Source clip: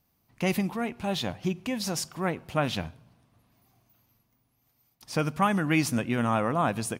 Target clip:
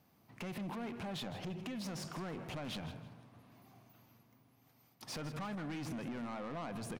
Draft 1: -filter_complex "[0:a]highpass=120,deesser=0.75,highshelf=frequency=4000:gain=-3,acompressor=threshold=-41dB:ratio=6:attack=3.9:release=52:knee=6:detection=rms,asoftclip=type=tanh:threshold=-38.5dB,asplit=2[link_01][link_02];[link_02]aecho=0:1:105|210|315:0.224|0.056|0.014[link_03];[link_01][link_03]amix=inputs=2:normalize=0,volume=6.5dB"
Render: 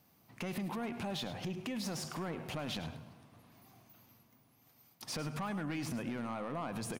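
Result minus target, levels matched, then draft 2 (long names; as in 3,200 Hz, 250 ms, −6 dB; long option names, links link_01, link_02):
echo 56 ms early; soft clipping: distortion −6 dB; 8,000 Hz band +2.5 dB
-filter_complex "[0:a]highpass=120,deesser=0.75,highshelf=frequency=4000:gain=-10,acompressor=threshold=-41dB:ratio=6:attack=3.9:release=52:knee=6:detection=rms,asoftclip=type=tanh:threshold=-45dB,asplit=2[link_01][link_02];[link_02]aecho=0:1:161|322|483:0.224|0.056|0.014[link_03];[link_01][link_03]amix=inputs=2:normalize=0,volume=6.5dB"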